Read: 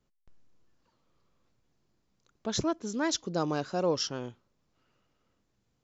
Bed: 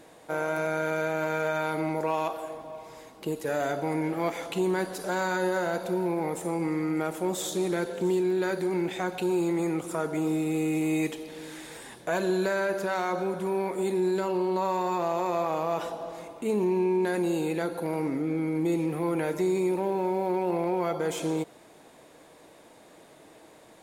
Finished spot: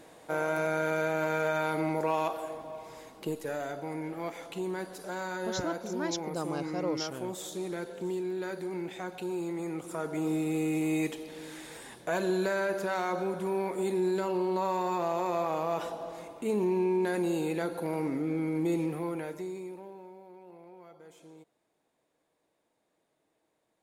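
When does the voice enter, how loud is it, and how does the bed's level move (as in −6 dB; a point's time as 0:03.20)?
3.00 s, −5.0 dB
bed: 0:03.18 −1 dB
0:03.66 −8 dB
0:09.62 −8 dB
0:10.34 −2.5 dB
0:18.83 −2.5 dB
0:20.27 −24 dB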